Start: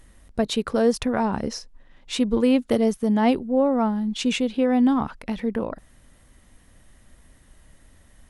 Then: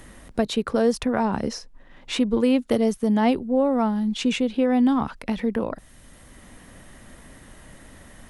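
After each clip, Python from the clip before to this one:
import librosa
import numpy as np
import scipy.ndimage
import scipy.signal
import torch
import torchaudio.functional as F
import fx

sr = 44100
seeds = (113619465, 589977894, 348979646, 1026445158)

y = fx.band_squash(x, sr, depth_pct=40)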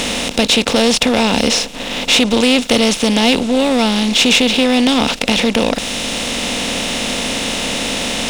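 y = fx.bin_compress(x, sr, power=0.4)
y = fx.band_shelf(y, sr, hz=4500.0, db=12.5, octaves=2.4)
y = fx.leveller(y, sr, passes=2)
y = F.gain(torch.from_numpy(y), -4.5).numpy()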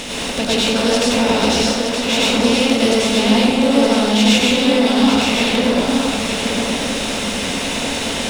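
y = x + 10.0 ** (-5.5 / 20.0) * np.pad(x, (int(920 * sr / 1000.0), 0))[:len(x)]
y = fx.rev_plate(y, sr, seeds[0], rt60_s=1.3, hf_ratio=0.45, predelay_ms=80, drr_db=-6.5)
y = F.gain(torch.from_numpy(y), -9.0).numpy()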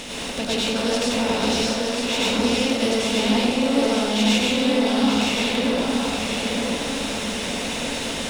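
y = x + 10.0 ** (-7.0 / 20.0) * np.pad(x, (int(962 * sr / 1000.0), 0))[:len(x)]
y = F.gain(torch.from_numpy(y), -6.5).numpy()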